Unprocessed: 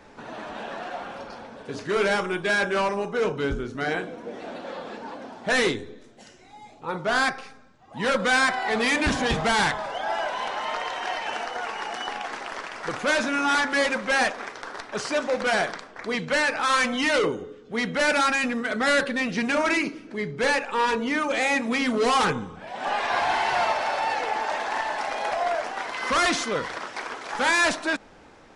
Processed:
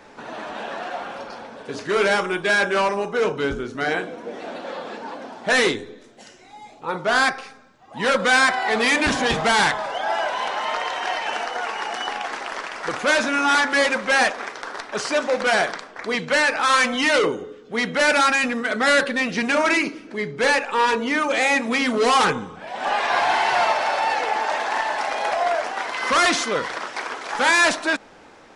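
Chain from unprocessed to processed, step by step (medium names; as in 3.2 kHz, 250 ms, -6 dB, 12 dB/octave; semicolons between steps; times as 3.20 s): bass shelf 160 Hz -9.5 dB; trim +4.5 dB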